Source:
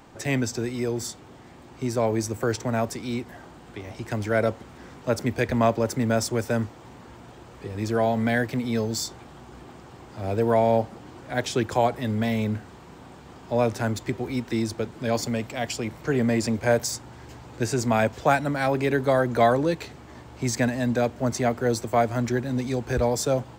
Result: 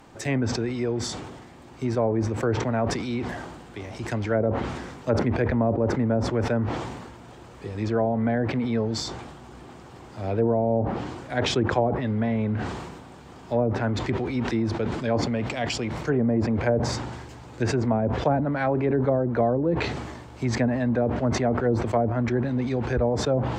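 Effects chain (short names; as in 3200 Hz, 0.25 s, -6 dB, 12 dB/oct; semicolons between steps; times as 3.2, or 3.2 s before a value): treble ducked by the level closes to 530 Hz, closed at -17 dBFS; sustainer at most 39 dB/s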